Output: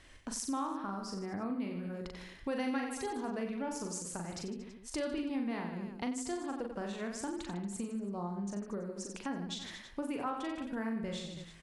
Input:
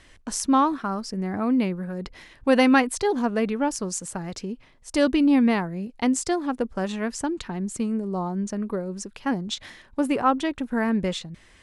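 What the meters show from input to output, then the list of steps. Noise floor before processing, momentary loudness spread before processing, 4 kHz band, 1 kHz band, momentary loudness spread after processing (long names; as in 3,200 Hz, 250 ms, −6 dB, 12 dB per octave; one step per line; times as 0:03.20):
−54 dBFS, 14 LU, −11.5 dB, −14.5 dB, 6 LU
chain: reverse bouncing-ball delay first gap 40 ms, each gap 1.25×, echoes 5
downward compressor 2.5 to 1, threshold −33 dBFS, peak gain reduction 15.5 dB
level −6 dB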